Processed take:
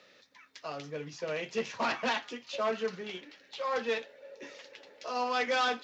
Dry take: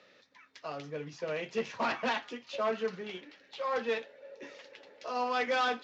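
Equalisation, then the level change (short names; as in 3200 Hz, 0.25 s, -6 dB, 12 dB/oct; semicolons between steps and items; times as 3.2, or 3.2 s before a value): high shelf 4600 Hz +8 dB; 0.0 dB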